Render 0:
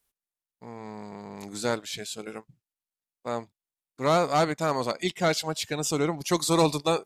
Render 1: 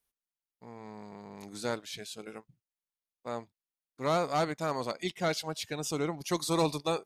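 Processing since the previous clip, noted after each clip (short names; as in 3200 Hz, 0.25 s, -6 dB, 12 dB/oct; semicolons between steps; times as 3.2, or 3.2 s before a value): notch 7500 Hz, Q 9.4; gain -6 dB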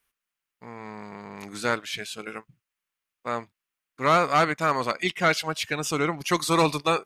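band shelf 1800 Hz +8 dB; gain +5.5 dB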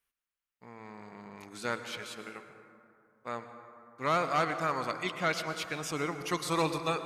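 reverb RT60 2.8 s, pre-delay 93 ms, DRR 8.5 dB; gain -8.5 dB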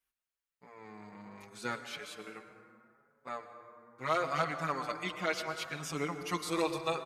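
endless flanger 5.9 ms +0.74 Hz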